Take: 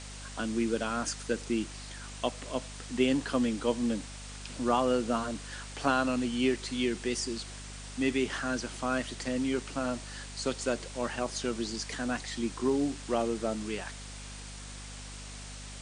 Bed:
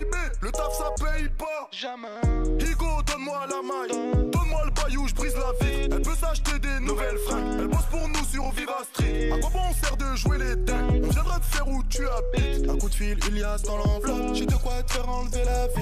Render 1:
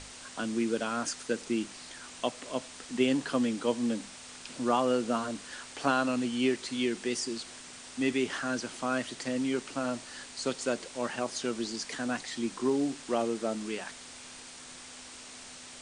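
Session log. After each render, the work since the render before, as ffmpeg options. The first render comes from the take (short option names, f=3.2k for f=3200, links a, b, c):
-af "bandreject=f=50:t=h:w=6,bandreject=f=100:t=h:w=6,bandreject=f=150:t=h:w=6,bandreject=f=200:t=h:w=6"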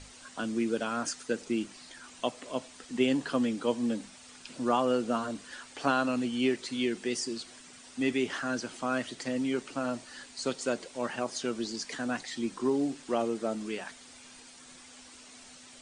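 -af "afftdn=nr=8:nf=-48"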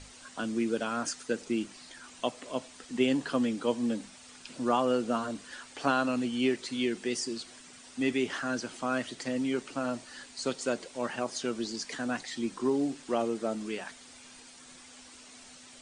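-af anull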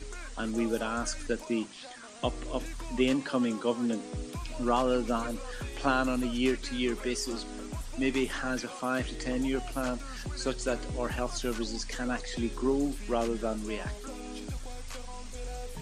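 -filter_complex "[1:a]volume=-15dB[a];[0:a][a]amix=inputs=2:normalize=0"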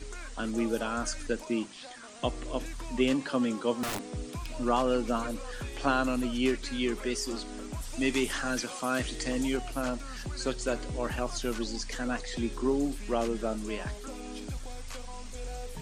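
-filter_complex "[0:a]asettb=1/sr,asplit=3[a][b][c];[a]atrim=end=3.834[d];[b]atrim=start=3.83:end=4.5,asetpts=PTS-STARTPTS,afade=t=in:d=0.004:c=qsin,afade=t=out:st=0.666:d=0.004:c=qsin,aeval=exprs='(mod(26.6*val(0)+1,2)-1)/26.6':c=same[e];[c]atrim=start=4.496[f];[d][e]acrossfade=d=0.004:c1=hsin:c2=qsin[g];[g][f]acrossfade=d=0.004:c1=qsin:c2=hsin,asettb=1/sr,asplit=3[h][i][j];[h]atrim=end=7.824[k];[i]atrim=start=7.82:end=9.57,asetpts=PTS-STARTPTS,afade=t=in:d=0.004:c=qsin,afade=t=out:st=1.746:d=0.004:c=qsin,highshelf=f=3.5k:g=7.5[l];[j]atrim=start=9.566[m];[k][l]acrossfade=d=0.004:c1=hsin:c2=qsin[n];[n][m]acrossfade=d=0.004:c1=qsin:c2=hsin"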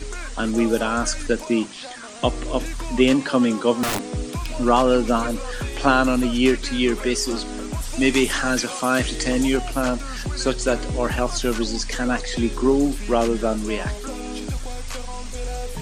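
-af "volume=10dB"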